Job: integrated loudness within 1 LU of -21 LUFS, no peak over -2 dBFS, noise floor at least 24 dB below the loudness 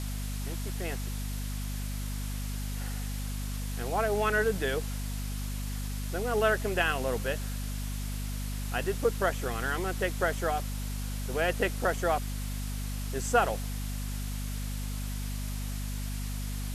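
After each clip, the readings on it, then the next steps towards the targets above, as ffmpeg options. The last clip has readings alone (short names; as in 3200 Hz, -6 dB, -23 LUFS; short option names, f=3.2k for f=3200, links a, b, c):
hum 50 Hz; harmonics up to 250 Hz; hum level -32 dBFS; noise floor -34 dBFS; noise floor target -57 dBFS; loudness -32.5 LUFS; peak -10.5 dBFS; loudness target -21.0 LUFS
-> -af "bandreject=f=50:t=h:w=6,bandreject=f=100:t=h:w=6,bandreject=f=150:t=h:w=6,bandreject=f=200:t=h:w=6,bandreject=f=250:t=h:w=6"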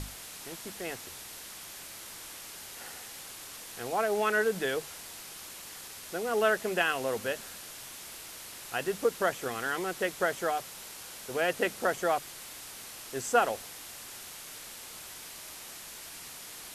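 hum none; noise floor -46 dBFS; noise floor target -58 dBFS
-> -af "afftdn=nr=12:nf=-46"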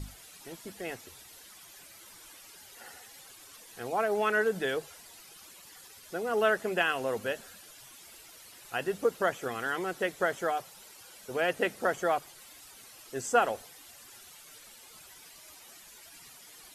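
noise floor -53 dBFS; noise floor target -55 dBFS
-> -af "afftdn=nr=6:nf=-53"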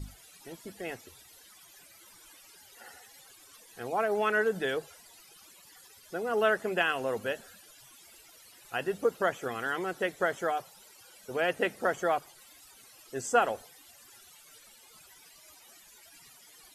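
noise floor -56 dBFS; loudness -31.0 LUFS; peak -11.0 dBFS; loudness target -21.0 LUFS
-> -af "volume=10dB,alimiter=limit=-2dB:level=0:latency=1"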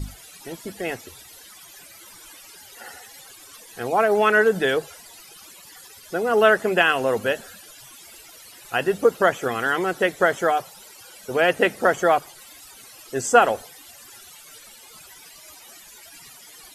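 loudness -21.0 LUFS; peak -2.0 dBFS; noise floor -46 dBFS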